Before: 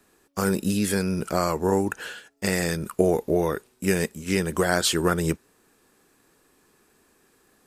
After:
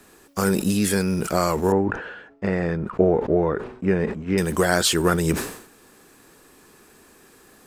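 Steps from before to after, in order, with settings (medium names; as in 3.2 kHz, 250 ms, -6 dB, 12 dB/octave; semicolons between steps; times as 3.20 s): companding laws mixed up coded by mu; 1.72–4.38 s: low-pass 1.5 kHz 12 dB/octave; decay stretcher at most 88 dB/s; trim +2 dB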